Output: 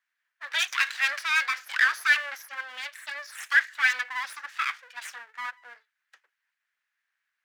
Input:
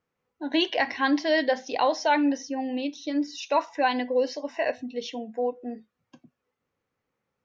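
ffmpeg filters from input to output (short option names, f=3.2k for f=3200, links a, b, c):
-af "aeval=exprs='abs(val(0))':c=same,highpass=f=1.7k:t=q:w=3.9"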